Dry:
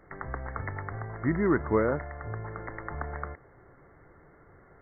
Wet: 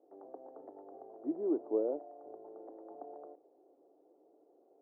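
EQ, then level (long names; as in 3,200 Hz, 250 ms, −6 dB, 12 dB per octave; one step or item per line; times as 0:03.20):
elliptic band-pass filter 290–750 Hz, stop band 80 dB
high-frequency loss of the air 220 metres
−5.0 dB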